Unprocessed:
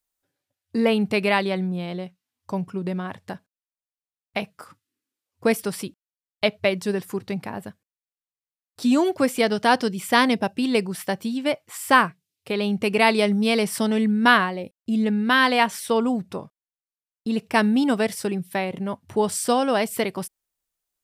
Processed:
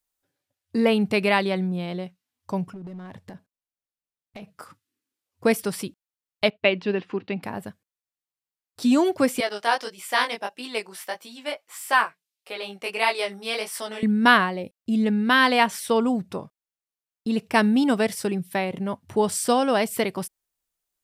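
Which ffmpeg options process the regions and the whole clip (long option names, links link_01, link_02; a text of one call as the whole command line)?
ffmpeg -i in.wav -filter_complex "[0:a]asettb=1/sr,asplit=3[link_01][link_02][link_03];[link_01]atrim=end=2.734[link_04];[link_02]atrim=start=2.73:end=4.57,asetpts=PTS-STARTPTS,afade=type=in:duration=0.004:curve=qsin,afade=type=out:start_time=1.836:duration=0.004:curve=qsin,tiltshelf=frequency=650:gain=3.5,acompressor=threshold=-33dB:ratio=16:attack=3.2:release=140:knee=1:detection=peak,asoftclip=type=hard:threshold=-33.5dB[link_05];[link_03]atrim=start=4.566[link_06];[link_04][link_05]acrossfade=duration=0.004:curve1=hsin:curve2=qsin[link_07];[link_07][link_06]acrossfade=duration=0.004:curve1=qsin:curve2=hsin,asettb=1/sr,asplit=3[link_08][link_09][link_10];[link_08]atrim=end=6.504[link_11];[link_09]atrim=start=6.5:end=7.43,asetpts=PTS-STARTPTS,afade=type=in:duration=0.004:curve=qsin,afade=type=out:start_time=0.926:duration=0.004:curve=qsin,agate=range=-33dB:threshold=-44dB:ratio=3:release=100:detection=peak,highpass=140,equalizer=frequency=140:width_type=q:width=4:gain=-10,equalizer=frequency=290:width_type=q:width=4:gain=5,equalizer=frequency=2700:width_type=q:width=4:gain=7,lowpass=frequency=3900:width=0.5412,lowpass=frequency=3900:width=1.3066[link_12];[link_10]atrim=start=7.426[link_13];[link_11][link_12]acrossfade=duration=0.004:curve1=hsin:curve2=qsin[link_14];[link_14][link_13]acrossfade=duration=0.004:curve1=qsin:curve2=hsin,asettb=1/sr,asplit=3[link_15][link_16][link_17];[link_15]atrim=end=9.404[link_18];[link_16]atrim=start=9.4:end=14.03,asetpts=PTS-STARTPTS,afade=type=in:duration=0.004:curve=qsin,afade=type=out:start_time=4.626:duration=0.004:curve=qsin,highpass=600,flanger=delay=16:depth=5.7:speed=1.6[link_19];[link_17]atrim=start=14.026[link_20];[link_18][link_19]acrossfade=duration=0.004:curve1=hsin:curve2=qsin[link_21];[link_21][link_20]acrossfade=duration=0.004:curve1=qsin:curve2=hsin" out.wav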